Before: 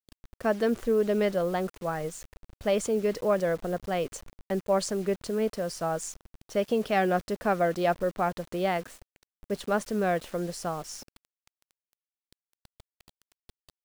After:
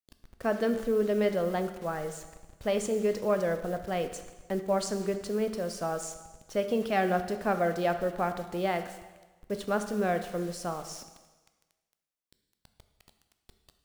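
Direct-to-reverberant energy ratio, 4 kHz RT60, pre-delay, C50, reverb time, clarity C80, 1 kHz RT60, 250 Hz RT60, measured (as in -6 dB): 8.0 dB, 1.2 s, 7 ms, 10.0 dB, 1.3 s, 11.5 dB, 1.2 s, 1.1 s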